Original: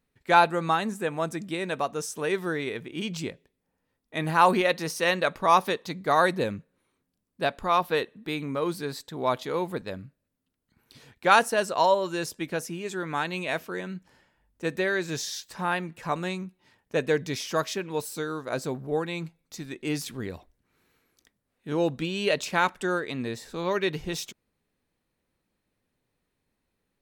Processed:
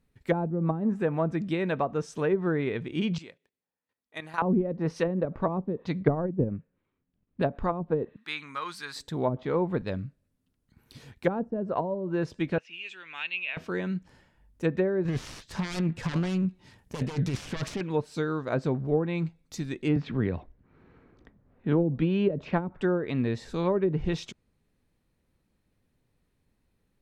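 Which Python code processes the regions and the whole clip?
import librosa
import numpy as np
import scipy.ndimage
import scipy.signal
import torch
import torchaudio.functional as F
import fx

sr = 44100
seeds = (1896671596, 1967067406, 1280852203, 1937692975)

y = fx.chain(x, sr, fx.highpass(hz=1200.0, slope=6),
    fx.high_shelf(hz=2800.0, db=-5.5),
    fx.level_steps(step_db=12), at=(3.18, 4.42))
y = fx.chain(y, sr, fx.lowpass(hz=3200.0, slope=24),
    fx.transient(attack_db=8, sustain_db=-8), at=(6.01, 7.42))
y = fx.chain(y, sr, fx.highpass(hz=350.0, slope=6),
    fx.low_shelf_res(hz=800.0, db=-14.0, q=1.5), at=(8.16, 8.96))
y = fx.chain(y, sr, fx.lowpass_res(hz=2700.0, q=7.1),
    fx.differentiator(), at=(12.58, 13.57))
y = fx.chain(y, sr, fx.self_delay(depth_ms=0.75),
    fx.bass_treble(bass_db=4, treble_db=5),
    fx.over_compress(threshold_db=-33.0, ratio=-1.0), at=(15.05, 17.81))
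y = fx.chain(y, sr, fx.env_lowpass(base_hz=1300.0, full_db=-20.5),
    fx.lowpass(hz=12000.0, slope=12),
    fx.band_squash(depth_pct=40), at=(19.96, 22.76))
y = fx.env_lowpass_down(y, sr, base_hz=310.0, full_db=-20.0)
y = fx.low_shelf(y, sr, hz=220.0, db=10.5)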